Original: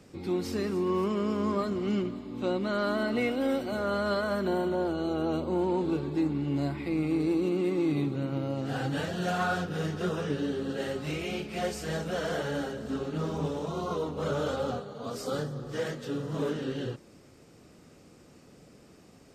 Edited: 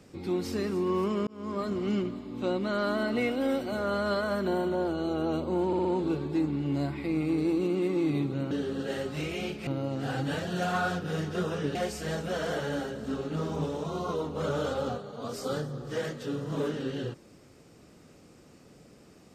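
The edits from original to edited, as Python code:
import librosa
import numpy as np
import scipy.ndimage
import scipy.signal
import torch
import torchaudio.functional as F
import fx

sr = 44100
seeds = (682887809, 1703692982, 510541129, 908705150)

y = fx.edit(x, sr, fx.fade_in_span(start_s=1.27, length_s=0.45),
    fx.stutter(start_s=5.67, slice_s=0.06, count=4),
    fx.move(start_s=10.41, length_s=1.16, to_s=8.33), tone=tone)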